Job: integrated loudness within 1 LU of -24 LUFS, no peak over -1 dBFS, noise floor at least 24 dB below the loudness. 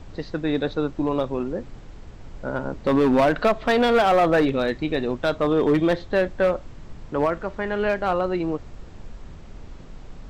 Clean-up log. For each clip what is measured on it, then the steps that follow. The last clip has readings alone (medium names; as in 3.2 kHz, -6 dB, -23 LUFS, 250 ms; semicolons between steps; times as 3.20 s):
clipped samples 1.5%; clipping level -13.0 dBFS; noise floor -42 dBFS; noise floor target -47 dBFS; loudness -22.5 LUFS; peak level -13.0 dBFS; loudness target -24.0 LUFS
-> clip repair -13 dBFS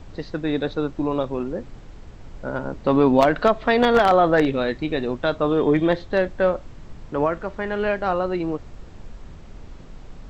clipped samples 0.0%; noise floor -42 dBFS; noise floor target -46 dBFS
-> noise print and reduce 6 dB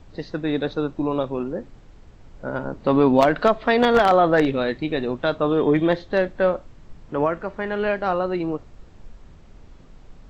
noise floor -47 dBFS; loudness -21.5 LUFS; peak level -4.0 dBFS; loudness target -24.0 LUFS
-> trim -2.5 dB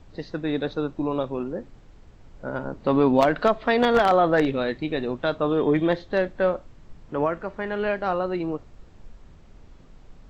loudness -24.0 LUFS; peak level -6.5 dBFS; noise floor -50 dBFS